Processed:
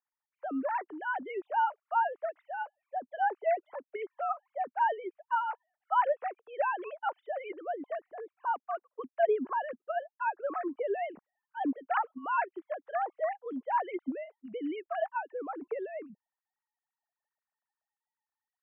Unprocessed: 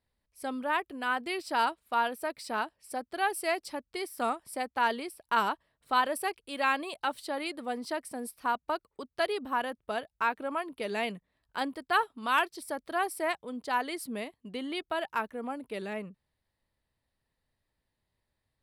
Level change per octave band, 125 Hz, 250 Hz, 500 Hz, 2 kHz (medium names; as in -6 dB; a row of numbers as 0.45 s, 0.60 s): no reading, -2.0 dB, +1.0 dB, -6.0 dB